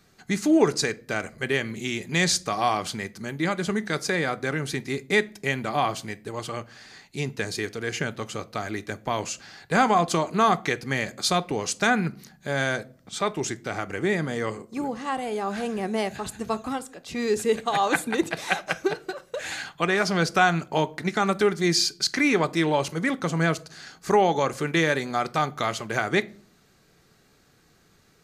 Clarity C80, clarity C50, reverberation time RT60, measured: 27.0 dB, 22.0 dB, 0.45 s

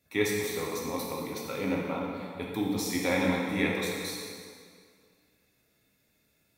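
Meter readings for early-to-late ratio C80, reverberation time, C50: 1.5 dB, 2.0 s, 0.0 dB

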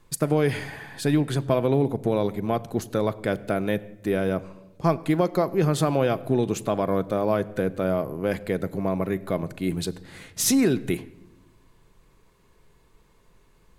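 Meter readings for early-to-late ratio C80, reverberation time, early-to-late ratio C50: 20.0 dB, 0.95 s, 19.5 dB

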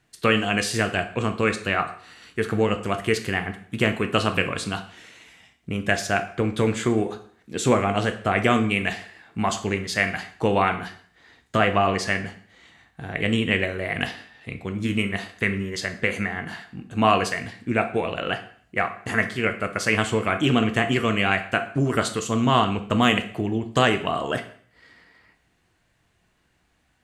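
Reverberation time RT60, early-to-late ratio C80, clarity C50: 0.50 s, 15.5 dB, 12.0 dB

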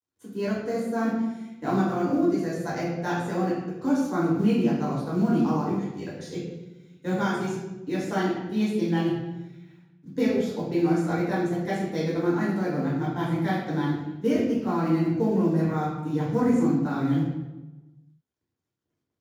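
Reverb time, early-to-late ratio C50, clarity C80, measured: 1.1 s, 1.0 dB, 4.0 dB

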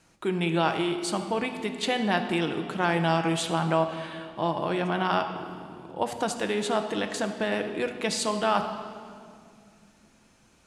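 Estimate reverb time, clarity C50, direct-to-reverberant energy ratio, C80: 2.2 s, 8.0 dB, 5.5 dB, 9.5 dB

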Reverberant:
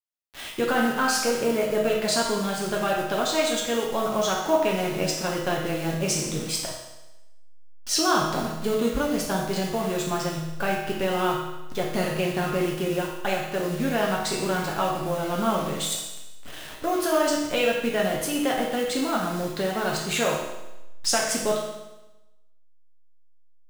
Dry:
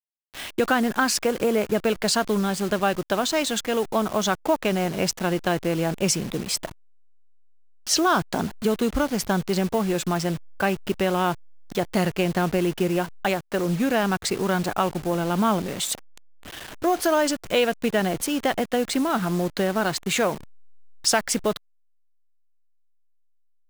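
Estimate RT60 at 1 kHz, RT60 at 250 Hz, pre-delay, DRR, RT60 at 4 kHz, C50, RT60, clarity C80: 1.0 s, 1.0 s, 6 ms, -2.5 dB, 1.0 s, 2.5 dB, 1.0 s, 5.0 dB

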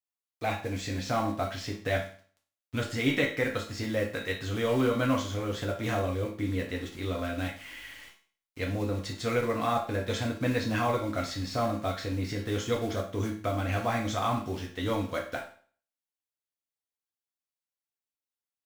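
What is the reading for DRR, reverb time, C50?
-1.0 dB, 0.45 s, 7.5 dB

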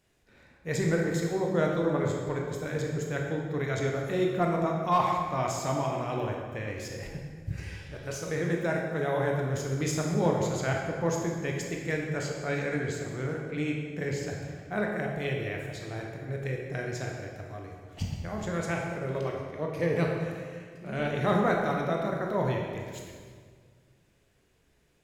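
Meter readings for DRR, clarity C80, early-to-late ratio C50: -0.5 dB, 3.5 dB, 2.0 dB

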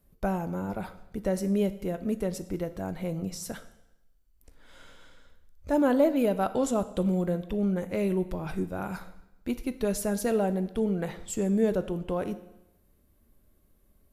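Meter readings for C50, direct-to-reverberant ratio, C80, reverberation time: 14.5 dB, 11.5 dB, 16.5 dB, 0.90 s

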